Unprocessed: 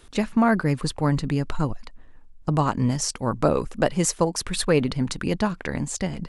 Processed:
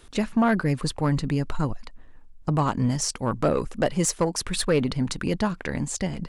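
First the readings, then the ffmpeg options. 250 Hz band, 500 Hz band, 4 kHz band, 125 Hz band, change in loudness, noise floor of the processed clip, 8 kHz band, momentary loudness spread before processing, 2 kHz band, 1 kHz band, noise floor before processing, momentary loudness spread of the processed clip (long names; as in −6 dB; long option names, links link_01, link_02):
−1.0 dB, −1.5 dB, −0.5 dB, −1.0 dB, −1.0 dB, −48 dBFS, −0.5 dB, 7 LU, −1.5 dB, −2.0 dB, −48 dBFS, 6 LU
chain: -af "asoftclip=type=tanh:threshold=-12.5dB"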